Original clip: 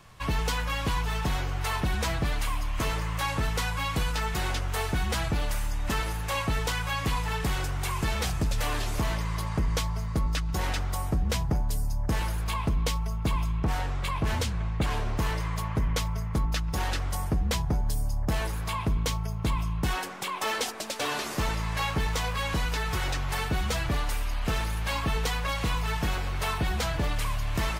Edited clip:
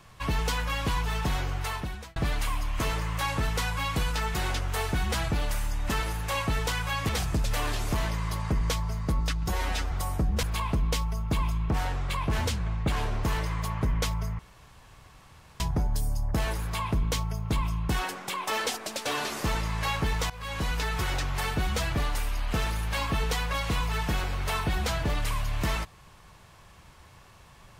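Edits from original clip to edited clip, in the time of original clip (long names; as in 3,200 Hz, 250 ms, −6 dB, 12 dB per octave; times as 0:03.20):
0:01.52–0:02.16: fade out
0:07.09–0:08.16: remove
0:10.57–0:10.85: time-stretch 1.5×
0:11.36–0:12.37: remove
0:16.33–0:17.54: fill with room tone
0:22.24–0:22.81: fade in equal-power, from −19 dB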